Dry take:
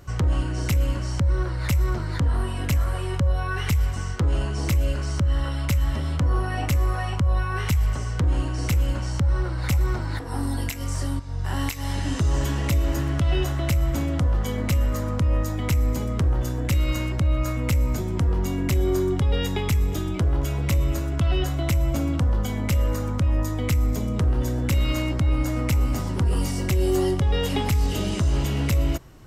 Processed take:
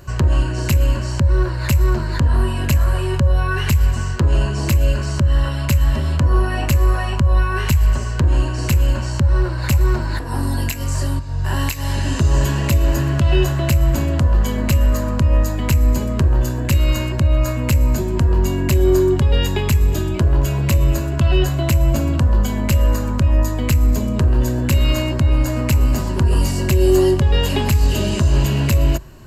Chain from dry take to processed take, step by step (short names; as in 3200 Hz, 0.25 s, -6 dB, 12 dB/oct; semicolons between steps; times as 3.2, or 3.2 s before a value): ripple EQ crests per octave 1.4, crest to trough 7 dB; gain +5.5 dB